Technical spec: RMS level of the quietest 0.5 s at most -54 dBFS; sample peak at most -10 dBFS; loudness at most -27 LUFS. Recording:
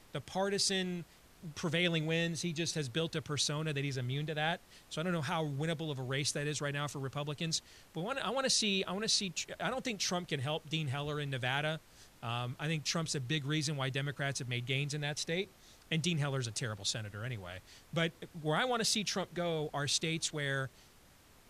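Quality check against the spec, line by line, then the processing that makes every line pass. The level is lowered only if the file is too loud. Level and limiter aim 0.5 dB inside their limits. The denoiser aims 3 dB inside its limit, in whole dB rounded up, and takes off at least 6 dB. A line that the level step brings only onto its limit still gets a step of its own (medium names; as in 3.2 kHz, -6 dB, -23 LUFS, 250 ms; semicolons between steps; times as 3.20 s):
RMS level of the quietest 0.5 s -61 dBFS: pass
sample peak -18.5 dBFS: pass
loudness -35.0 LUFS: pass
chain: none needed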